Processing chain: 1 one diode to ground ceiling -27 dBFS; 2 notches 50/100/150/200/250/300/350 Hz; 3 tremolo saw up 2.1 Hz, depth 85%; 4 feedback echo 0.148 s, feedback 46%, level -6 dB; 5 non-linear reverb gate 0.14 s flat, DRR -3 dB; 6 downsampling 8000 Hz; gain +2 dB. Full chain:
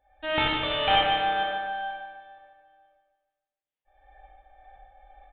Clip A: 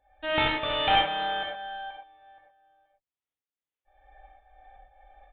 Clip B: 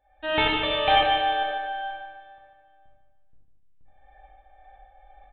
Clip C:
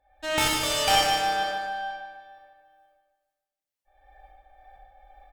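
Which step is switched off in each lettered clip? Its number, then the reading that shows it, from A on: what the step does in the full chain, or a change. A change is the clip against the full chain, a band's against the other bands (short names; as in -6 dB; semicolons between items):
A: 4, momentary loudness spread change +1 LU; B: 1, 125 Hz band -2.5 dB; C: 6, loudness change +1.0 LU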